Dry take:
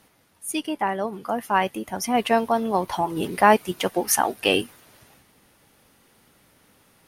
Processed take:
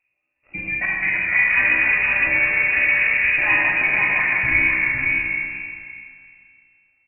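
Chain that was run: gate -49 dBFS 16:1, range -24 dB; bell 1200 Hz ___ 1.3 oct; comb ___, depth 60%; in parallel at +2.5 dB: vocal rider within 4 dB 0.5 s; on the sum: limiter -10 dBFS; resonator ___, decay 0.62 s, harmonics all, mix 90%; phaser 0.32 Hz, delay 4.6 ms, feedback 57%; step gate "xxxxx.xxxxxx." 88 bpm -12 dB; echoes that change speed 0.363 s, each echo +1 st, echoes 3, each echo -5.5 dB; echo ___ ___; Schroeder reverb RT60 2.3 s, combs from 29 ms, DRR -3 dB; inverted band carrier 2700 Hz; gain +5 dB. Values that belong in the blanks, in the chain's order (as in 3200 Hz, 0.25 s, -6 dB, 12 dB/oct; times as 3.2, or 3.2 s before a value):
-9.5 dB, 4.2 ms, 66 Hz, 0.511 s, -3.5 dB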